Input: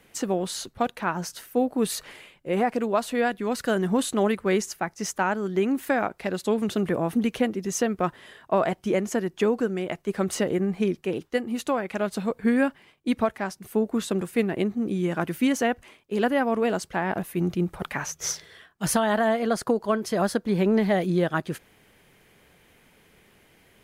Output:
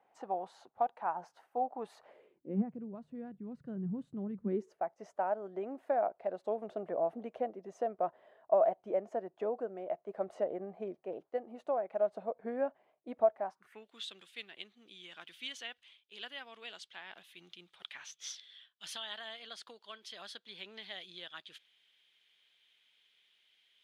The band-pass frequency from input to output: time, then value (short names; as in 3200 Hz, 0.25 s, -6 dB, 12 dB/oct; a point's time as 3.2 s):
band-pass, Q 5
2 s 790 Hz
2.76 s 140 Hz
4.32 s 140 Hz
4.82 s 650 Hz
13.43 s 650 Hz
13.88 s 3400 Hz